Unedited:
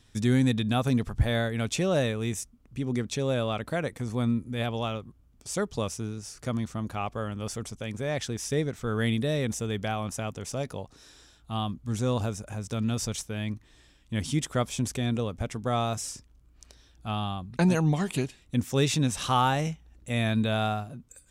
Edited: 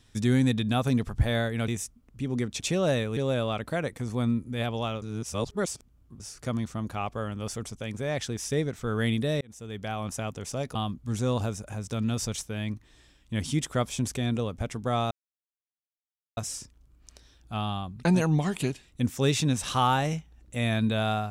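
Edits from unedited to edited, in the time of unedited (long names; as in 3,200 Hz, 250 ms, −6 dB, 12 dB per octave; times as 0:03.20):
0:01.68–0:02.25: move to 0:03.17
0:05.02–0:06.20: reverse
0:09.41–0:10.10: fade in
0:10.75–0:11.55: remove
0:15.91: splice in silence 1.26 s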